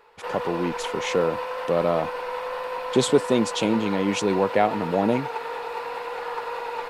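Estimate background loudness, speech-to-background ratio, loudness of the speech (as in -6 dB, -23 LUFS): -31.0 LUFS, 6.5 dB, -24.5 LUFS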